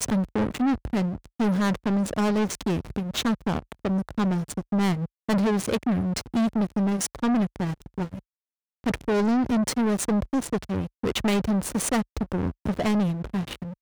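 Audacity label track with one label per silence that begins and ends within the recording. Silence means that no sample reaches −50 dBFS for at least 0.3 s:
8.200000	8.840000	silence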